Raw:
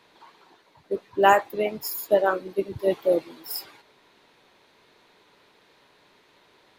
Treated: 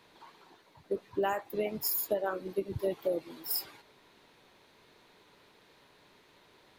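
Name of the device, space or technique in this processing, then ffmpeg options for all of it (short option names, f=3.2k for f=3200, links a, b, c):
ASMR close-microphone chain: -af "lowshelf=f=210:g=6,acompressor=threshold=-24dB:ratio=8,highshelf=f=8.8k:g=5.5,volume=-3.5dB"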